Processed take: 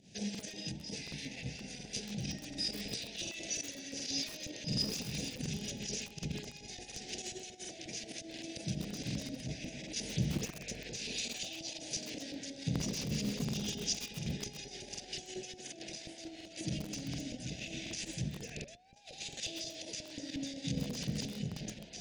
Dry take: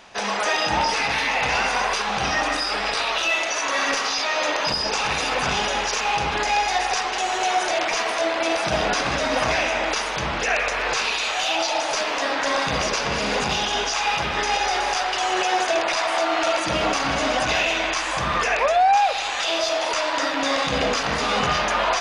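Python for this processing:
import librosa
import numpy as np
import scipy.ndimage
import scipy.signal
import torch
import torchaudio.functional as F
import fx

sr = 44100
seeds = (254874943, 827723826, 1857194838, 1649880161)

p1 = fx.peak_eq(x, sr, hz=130.0, db=11.0, octaves=2.5)
p2 = p1 + fx.echo_single(p1, sr, ms=282, db=-13.5, dry=0)
p3 = fx.volume_shaper(p2, sr, bpm=133, per_beat=1, depth_db=-13, release_ms=100.0, shape='fast start')
p4 = fx.filter_lfo_bandpass(p3, sr, shape='saw_up', hz=5.6, low_hz=770.0, high_hz=1700.0, q=0.9)
p5 = fx.over_compress(p4, sr, threshold_db=-29.0, ratio=-1.0)
p6 = scipy.signal.sosfilt(scipy.signal.cheby1(2, 1.0, [160.0, 7500.0], 'bandstop', fs=sr, output='sos'), p5)
p7 = fx.peak_eq(p6, sr, hz=1500.0, db=4.0, octaves=1.2)
p8 = fx.buffer_crackle(p7, sr, first_s=0.3, period_s=0.73, block=2048, kind='repeat')
p9 = fx.echo_crushed(p8, sr, ms=130, feedback_pct=80, bits=7, wet_db=-8)
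y = p9 * librosa.db_to_amplitude(7.0)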